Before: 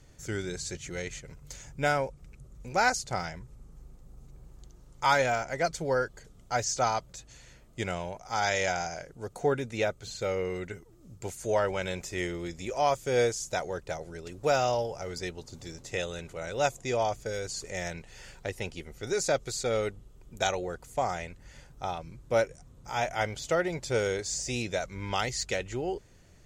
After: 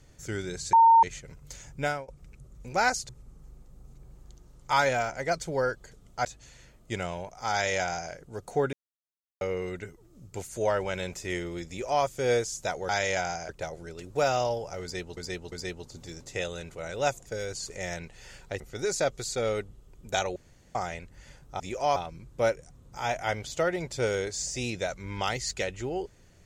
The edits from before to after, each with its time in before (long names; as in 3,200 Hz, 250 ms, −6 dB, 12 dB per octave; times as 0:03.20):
0:00.73–0:01.03: beep over 913 Hz −13.5 dBFS
0:01.80–0:02.08: fade out, to −22 dB
0:03.09–0:03.42: remove
0:06.58–0:07.13: remove
0:08.40–0:09.00: duplicate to 0:13.77
0:09.61–0:10.29: silence
0:12.56–0:12.92: duplicate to 0:21.88
0:15.10–0:15.45: repeat, 3 plays
0:16.84–0:17.20: remove
0:18.54–0:18.88: remove
0:20.64–0:21.03: fill with room tone